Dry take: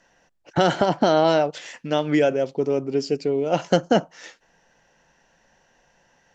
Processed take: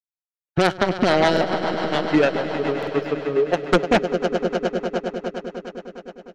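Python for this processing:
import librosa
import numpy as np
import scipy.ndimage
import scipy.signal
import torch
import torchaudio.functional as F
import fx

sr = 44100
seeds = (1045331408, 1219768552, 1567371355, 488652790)

y = fx.bin_expand(x, sr, power=1.5)
y = fx.air_absorb(y, sr, metres=84.0)
y = fx.power_curve(y, sr, exponent=2.0)
y = fx.peak_eq(y, sr, hz=420.0, db=14.5, octaves=0.31, at=(3.36, 3.91))
y = fx.echo_swell(y, sr, ms=102, loudest=5, wet_db=-16)
y = fx.rotary(y, sr, hz=7.0)
y = fx.fold_sine(y, sr, drive_db=11, ceiling_db=-9.5)
y = fx.buffer_glitch(y, sr, at_s=(1.32, 2.78), block=2048, repeats=1)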